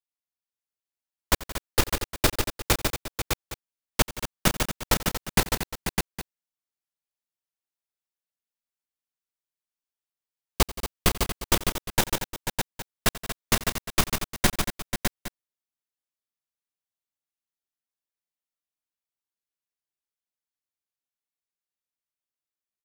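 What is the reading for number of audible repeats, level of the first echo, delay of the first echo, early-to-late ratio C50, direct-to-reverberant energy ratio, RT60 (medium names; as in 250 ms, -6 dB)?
6, -18.0 dB, 88 ms, no reverb, no reverb, no reverb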